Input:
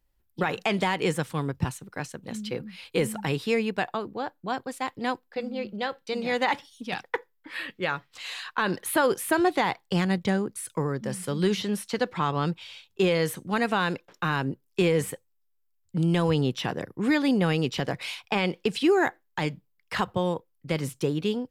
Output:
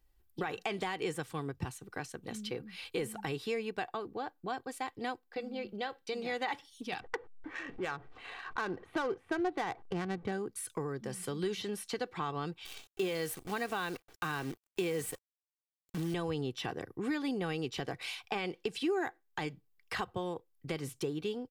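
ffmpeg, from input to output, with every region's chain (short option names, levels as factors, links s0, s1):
-filter_complex "[0:a]asettb=1/sr,asplit=3[s0][s1][s2];[s0]atrim=end=7.004[s3];[s1]atrim=start=7:end=10.32,asetpts=PTS-STARTPTS,afade=t=in:d=0.004:c=qsin,afade=t=out:st=3.316:d=0.004:c=qsin,aeval=exprs='val(0)+0.5*0.01*sgn(val(0))':c=same,adynamicsmooth=sensitivity=1.5:basefreq=890[s4];[s2]atrim=start=10.316[s5];[s3][s4]acrossfade=d=0.004:c1=hsin:c2=qsin[s6];[s6][s5]acrossfade=d=0.004:c1=qsin:c2=hsin,asettb=1/sr,asplit=3[s7][s8][s9];[s7]atrim=end=12.654[s10];[s8]atrim=start=12.65:end=16.14,asetpts=PTS-STARTPTS,afade=t=in:d=0.004:c=qsin,afade=t=out:st=3.486:d=0.004:c=qsin,highpass=80,highshelf=f=9000:g=7,acrusher=bits=7:dc=4:mix=0:aa=0.000001[s11];[s9]atrim=start=16.136[s12];[s10][s11]acrossfade=d=0.004:c1=hsin:c2=qsin[s13];[s13][s12]acrossfade=d=0.004:c1=qsin:c2=hsin,aecho=1:1:2.6:0.41,acompressor=threshold=0.00891:ratio=2"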